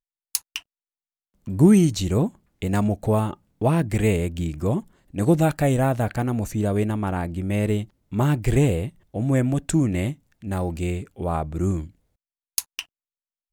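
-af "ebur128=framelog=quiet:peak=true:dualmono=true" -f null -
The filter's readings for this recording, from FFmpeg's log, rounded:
Integrated loudness:
  I:         -20.3 LUFS
  Threshold: -30.7 LUFS
Loudness range:
  LRA:         5.3 LU
  Threshold: -40.7 LUFS
  LRA low:   -23.9 LUFS
  LRA high:  -18.6 LUFS
True peak:
  Peak:       -1.2 dBFS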